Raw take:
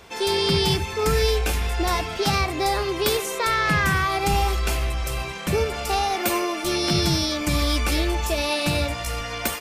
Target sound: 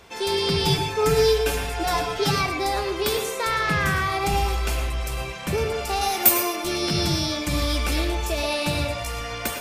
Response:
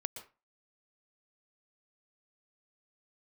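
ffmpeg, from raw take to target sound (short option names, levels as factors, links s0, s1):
-filter_complex "[0:a]asettb=1/sr,asplit=3[s0][s1][s2];[s0]atrim=end=0.654[s3];[s1]atrim=start=0.65:end=2.47,asetpts=PTS-STARTPTS,afade=t=in:d=0.004:c=qsin,afade=t=out:st=1.816:d=0.004:c=qsin,aecho=1:1:7:0.75,atrim=end_sample=80262[s4];[s2]atrim=start=2.466[s5];[s3][s4]acrossfade=d=0.004:c1=hsin:c2=qsin[s6];[s6][s5]acrossfade=d=0.004:c1=qsin:c2=hsin,asettb=1/sr,asplit=3[s7][s8][s9];[s7]atrim=end=6.014[s10];[s8]atrim=start=6.01:end=6.56,asetpts=PTS-STARTPTS,afade=t=in:d=0.004:c=qsin,afade=t=out:st=0.546:d=0.004:c=qsin,aemphasis=mode=production:type=50fm[s11];[s9]atrim=start=6.556[s12];[s10][s11]acrossfade=d=0.004:c1=hsin:c2=qsin[s13];[s13][s12]acrossfade=d=0.004:c1=qsin:c2=hsin[s14];[1:a]atrim=start_sample=2205,asetrate=48510,aresample=44100[s15];[s14][s15]afir=irnorm=-1:irlink=0"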